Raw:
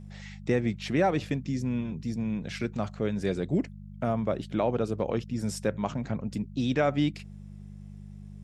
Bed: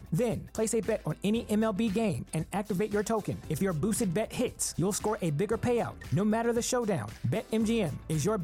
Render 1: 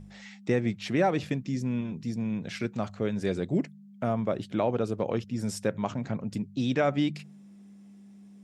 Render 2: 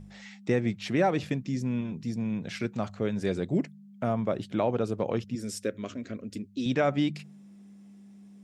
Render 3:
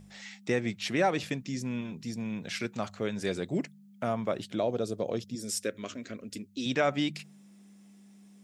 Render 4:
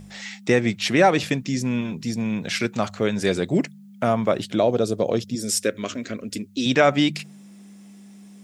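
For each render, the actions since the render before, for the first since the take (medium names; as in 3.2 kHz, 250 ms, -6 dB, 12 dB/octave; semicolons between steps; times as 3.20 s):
de-hum 50 Hz, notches 3
5.35–6.66 s: static phaser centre 350 Hz, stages 4
4.54–5.49 s: time-frequency box 740–3200 Hz -8 dB; tilt EQ +2 dB/octave
trim +10 dB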